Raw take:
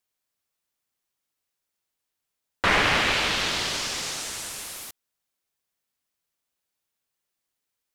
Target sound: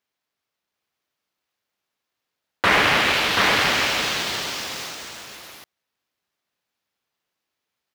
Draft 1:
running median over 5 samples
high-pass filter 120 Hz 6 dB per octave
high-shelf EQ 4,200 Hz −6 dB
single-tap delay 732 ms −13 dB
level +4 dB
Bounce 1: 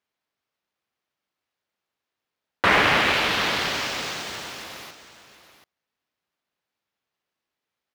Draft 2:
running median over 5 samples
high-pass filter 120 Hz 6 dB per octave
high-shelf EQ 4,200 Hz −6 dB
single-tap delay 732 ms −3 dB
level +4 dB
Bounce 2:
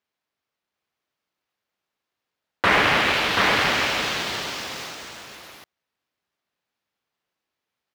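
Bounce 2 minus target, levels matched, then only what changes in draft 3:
8,000 Hz band −3.0 dB
remove: high-shelf EQ 4,200 Hz −6 dB

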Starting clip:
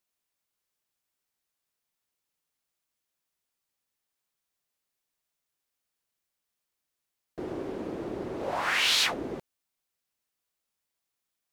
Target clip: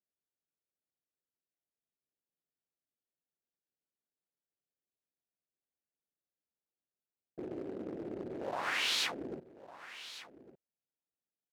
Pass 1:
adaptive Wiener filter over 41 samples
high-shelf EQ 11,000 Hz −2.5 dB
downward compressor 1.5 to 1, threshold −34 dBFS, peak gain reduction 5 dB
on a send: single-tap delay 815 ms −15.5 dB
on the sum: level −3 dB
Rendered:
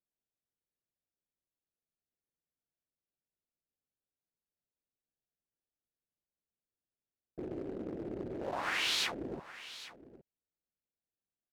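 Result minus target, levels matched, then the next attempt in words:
echo 340 ms early; 125 Hz band +4.0 dB
adaptive Wiener filter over 41 samples
high-pass filter 170 Hz 6 dB per octave
high-shelf EQ 11,000 Hz −2.5 dB
downward compressor 1.5 to 1, threshold −34 dBFS, peak gain reduction 5 dB
on a send: single-tap delay 1,155 ms −15.5 dB
on the sum: level −3 dB

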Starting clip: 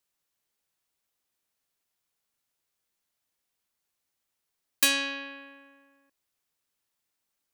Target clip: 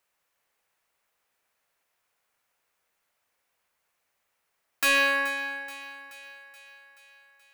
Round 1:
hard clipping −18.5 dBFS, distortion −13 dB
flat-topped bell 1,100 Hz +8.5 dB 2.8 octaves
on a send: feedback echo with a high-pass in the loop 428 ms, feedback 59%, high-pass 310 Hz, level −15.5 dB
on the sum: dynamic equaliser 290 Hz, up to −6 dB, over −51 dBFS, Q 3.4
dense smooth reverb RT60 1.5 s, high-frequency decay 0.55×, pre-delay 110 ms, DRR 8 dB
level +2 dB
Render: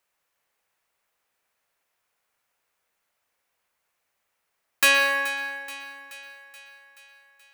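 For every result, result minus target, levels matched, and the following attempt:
250 Hz band −6.0 dB; hard clipping: distortion −7 dB
hard clipping −18.5 dBFS, distortion −13 dB
flat-topped bell 1,100 Hz +8.5 dB 2.8 octaves
on a send: feedback echo with a high-pass in the loop 428 ms, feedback 59%, high-pass 310 Hz, level −15.5 dB
on the sum: dynamic equaliser 130 Hz, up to −6 dB, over −51 dBFS, Q 3.4
dense smooth reverb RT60 1.5 s, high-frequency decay 0.55×, pre-delay 110 ms, DRR 8 dB
level +2 dB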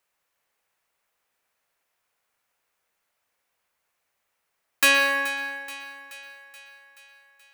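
hard clipping: distortion −7 dB
hard clipping −26.5 dBFS, distortion −5 dB
flat-topped bell 1,100 Hz +8.5 dB 2.8 octaves
on a send: feedback echo with a high-pass in the loop 428 ms, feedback 59%, high-pass 310 Hz, level −15.5 dB
on the sum: dynamic equaliser 130 Hz, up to −6 dB, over −51 dBFS, Q 3.4
dense smooth reverb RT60 1.5 s, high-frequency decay 0.55×, pre-delay 110 ms, DRR 8 dB
level +2 dB

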